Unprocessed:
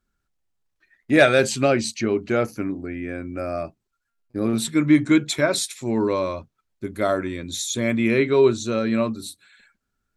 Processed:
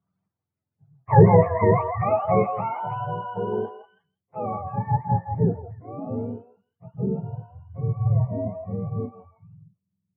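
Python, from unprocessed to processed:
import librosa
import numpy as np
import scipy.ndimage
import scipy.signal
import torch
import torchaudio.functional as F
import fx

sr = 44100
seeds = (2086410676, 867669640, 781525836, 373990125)

p1 = fx.octave_mirror(x, sr, pivot_hz=510.0)
p2 = fx.filter_sweep_lowpass(p1, sr, from_hz=1500.0, to_hz=240.0, start_s=2.38, end_s=6.26, q=0.74)
p3 = p2 + fx.echo_stepped(p2, sr, ms=164, hz=860.0, octaves=1.4, feedback_pct=70, wet_db=-3.5, dry=0)
y = p3 * 10.0 ** (2.0 / 20.0)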